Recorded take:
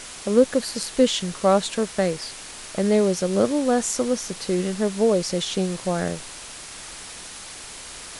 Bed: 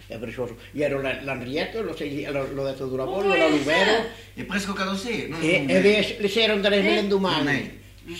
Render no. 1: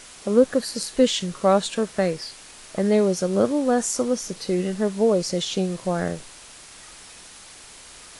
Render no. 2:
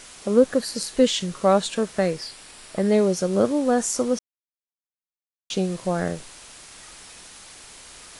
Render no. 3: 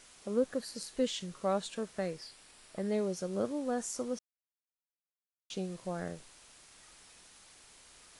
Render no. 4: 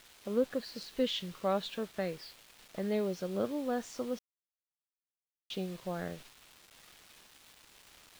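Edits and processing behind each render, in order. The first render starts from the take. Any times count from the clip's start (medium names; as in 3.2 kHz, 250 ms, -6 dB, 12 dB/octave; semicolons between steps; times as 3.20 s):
noise print and reduce 6 dB
2.27–2.89 s: band-stop 6.4 kHz, Q 8.2; 4.19–5.50 s: mute
trim -13.5 dB
resonant low-pass 3.6 kHz, resonance Q 1.6; bit crusher 9-bit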